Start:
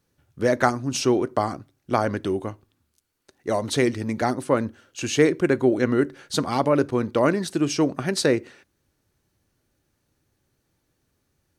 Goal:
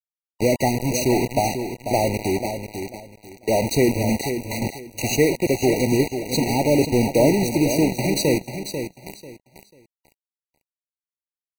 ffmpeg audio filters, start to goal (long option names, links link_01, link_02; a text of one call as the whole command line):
ffmpeg -i in.wav -filter_complex "[0:a]aeval=exprs='val(0)+0.5*0.0447*sgn(val(0))':channel_layout=same,asplit=2[link_01][link_02];[link_02]aecho=0:1:817:0.15[link_03];[link_01][link_03]amix=inputs=2:normalize=0,aphaser=in_gain=1:out_gain=1:delay=1.7:decay=0.24:speed=0.28:type=triangular,asettb=1/sr,asplit=3[link_04][link_05][link_06];[link_04]atrim=end=4.214[link_07];[link_05]atrim=start=4.21:end=4.62,asetpts=PTS-STARTPTS,afade=type=in:duration=0.004:curve=qsin,afade=type=out:start_time=0.406:duration=0.004:curve=qsin,highpass=frequency=990:width=0.5412,highpass=frequency=990:width=1.3066[link_08];[link_06]atrim=start=4.616[link_09];[link_07][link_08]acrossfade=duration=0.004:curve1=hsin:curve2=qsin[link_10];[link_10][link_09]acrossfade=duration=0.004:curve1=qsin:curve2=hsin,acrusher=bits=3:mix=0:aa=0.000001,asplit=2[link_11][link_12];[link_12]aecho=0:1:492|984|1476:0.376|0.0902|0.0216[link_13];[link_11][link_13]amix=inputs=2:normalize=0,afftfilt=real='re*eq(mod(floor(b*sr/1024/960),2),0)':imag='im*eq(mod(floor(b*sr/1024/960),2),0)':win_size=1024:overlap=0.75" out.wav